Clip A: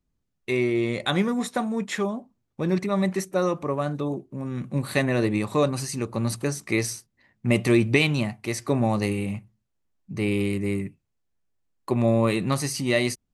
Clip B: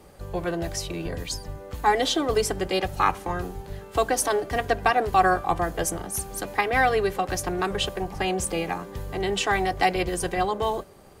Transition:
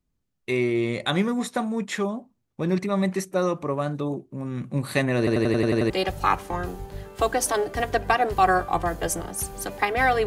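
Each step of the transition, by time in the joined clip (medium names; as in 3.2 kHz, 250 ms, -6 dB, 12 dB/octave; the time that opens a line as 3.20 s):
clip A
5.18 s: stutter in place 0.09 s, 8 plays
5.90 s: go over to clip B from 2.66 s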